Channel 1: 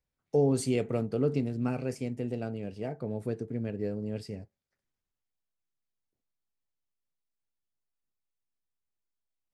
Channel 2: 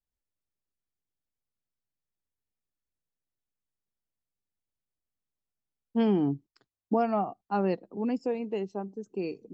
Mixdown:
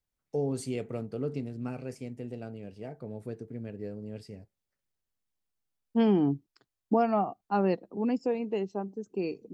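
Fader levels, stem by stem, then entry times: -5.5 dB, +1.0 dB; 0.00 s, 0.00 s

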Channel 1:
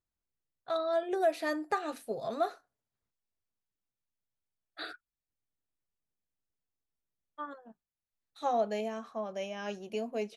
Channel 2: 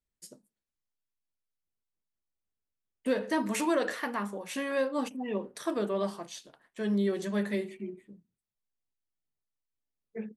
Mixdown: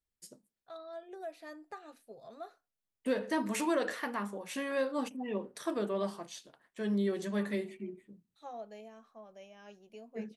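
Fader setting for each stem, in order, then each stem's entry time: -15.0 dB, -3.0 dB; 0.00 s, 0.00 s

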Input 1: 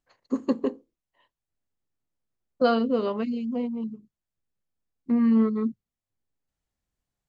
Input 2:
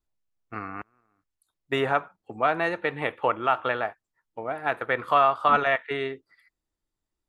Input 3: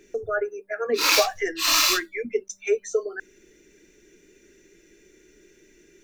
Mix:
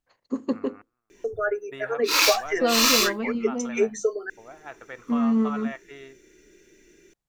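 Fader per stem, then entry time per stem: -1.5 dB, -14.5 dB, 0.0 dB; 0.00 s, 0.00 s, 1.10 s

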